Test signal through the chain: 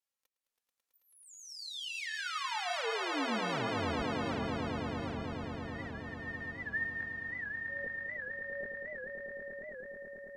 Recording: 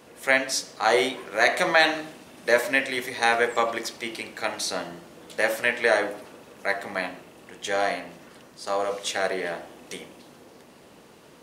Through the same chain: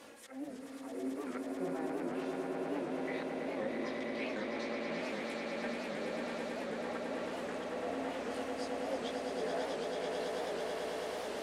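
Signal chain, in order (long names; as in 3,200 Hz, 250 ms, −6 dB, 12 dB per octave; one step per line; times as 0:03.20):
treble cut that deepens with the level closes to 320 Hz, closed at −21.5 dBFS
low-shelf EQ 170 Hz −10 dB
multi-voice chorus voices 6, 0.62 Hz, delay 20 ms, depth 2.4 ms
reversed playback
downward compressor 5 to 1, threshold −43 dBFS
reversed playback
volume swells 246 ms
flanger 0.28 Hz, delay 3.5 ms, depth 1.8 ms, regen +37%
echo that builds up and dies away 109 ms, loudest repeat 8, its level −6 dB
wow of a warped record 78 rpm, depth 160 cents
level +8.5 dB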